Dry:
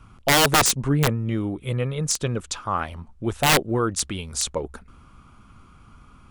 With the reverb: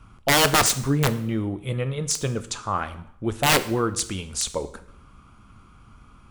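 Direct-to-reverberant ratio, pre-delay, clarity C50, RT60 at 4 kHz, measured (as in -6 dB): 11.0 dB, 4 ms, 14.5 dB, 0.65 s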